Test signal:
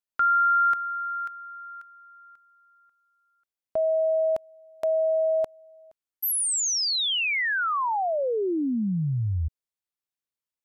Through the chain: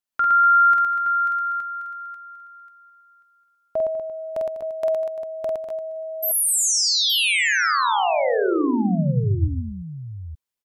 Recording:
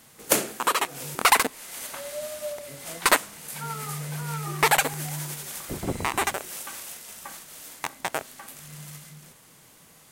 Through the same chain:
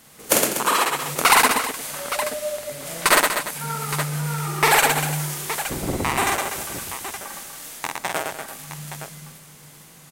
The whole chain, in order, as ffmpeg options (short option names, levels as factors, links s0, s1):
-af "aecho=1:1:48|113|198|243|344|869:0.708|0.668|0.224|0.376|0.178|0.316,volume=1.26"